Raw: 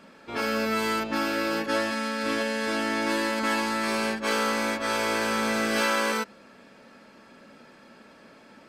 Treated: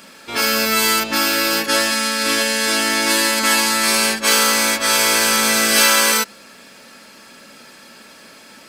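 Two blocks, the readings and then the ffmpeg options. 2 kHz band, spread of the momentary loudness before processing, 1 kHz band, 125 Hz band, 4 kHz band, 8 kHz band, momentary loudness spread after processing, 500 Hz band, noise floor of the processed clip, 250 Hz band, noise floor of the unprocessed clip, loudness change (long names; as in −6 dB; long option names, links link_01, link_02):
+10.5 dB, 4 LU, +7.5 dB, +4.0 dB, +16.0 dB, +21.0 dB, 5 LU, +5.0 dB, −44 dBFS, +4.5 dB, −53 dBFS, +11.5 dB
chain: -af "crystalizer=i=6.5:c=0,volume=7dB,asoftclip=hard,volume=-7dB,volume=4dB"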